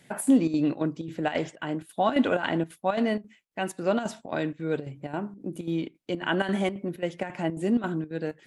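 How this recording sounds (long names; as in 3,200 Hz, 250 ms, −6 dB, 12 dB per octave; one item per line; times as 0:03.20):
chopped level 3.7 Hz, depth 65%, duty 75%
MP3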